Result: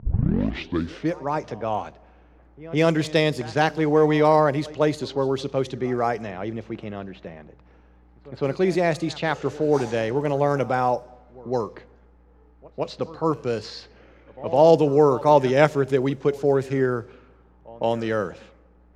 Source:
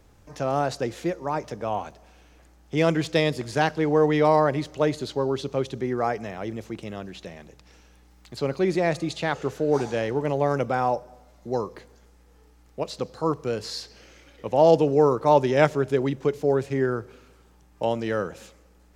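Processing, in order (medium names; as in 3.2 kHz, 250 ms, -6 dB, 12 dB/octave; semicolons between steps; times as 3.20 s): tape start-up on the opening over 1.16 s; pre-echo 160 ms -20 dB; level-controlled noise filter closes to 1.3 kHz, open at -20.5 dBFS; trim +2 dB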